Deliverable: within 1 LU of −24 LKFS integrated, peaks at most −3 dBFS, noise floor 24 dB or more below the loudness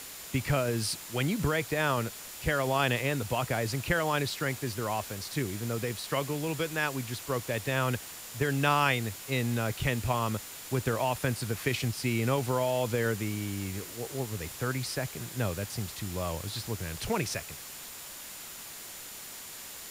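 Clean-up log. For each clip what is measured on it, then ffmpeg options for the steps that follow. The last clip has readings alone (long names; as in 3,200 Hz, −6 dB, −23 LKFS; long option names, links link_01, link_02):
interfering tone 7,100 Hz; level of the tone −52 dBFS; background noise floor −44 dBFS; target noise floor −56 dBFS; integrated loudness −31.5 LKFS; sample peak −11.0 dBFS; target loudness −24.0 LKFS
→ -af "bandreject=frequency=7100:width=30"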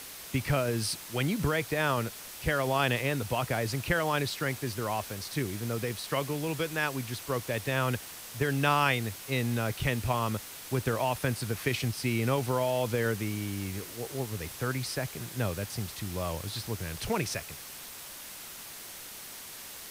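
interfering tone none found; background noise floor −45 dBFS; target noise floor −56 dBFS
→ -af "afftdn=noise_reduction=11:noise_floor=-45"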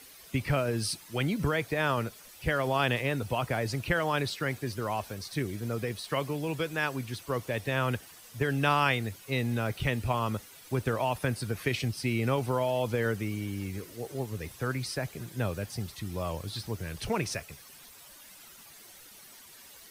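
background noise floor −52 dBFS; target noise floor −56 dBFS
→ -af "afftdn=noise_reduction=6:noise_floor=-52"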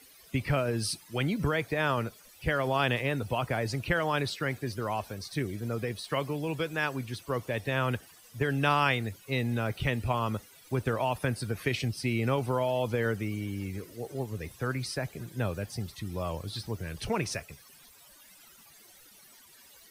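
background noise floor −56 dBFS; integrated loudness −31.5 LKFS; sample peak −11.0 dBFS; target loudness −24.0 LKFS
→ -af "volume=7.5dB"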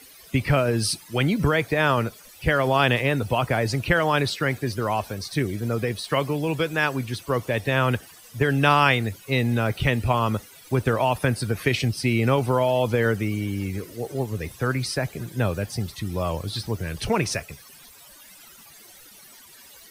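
integrated loudness −24.0 LKFS; sample peak −3.5 dBFS; background noise floor −48 dBFS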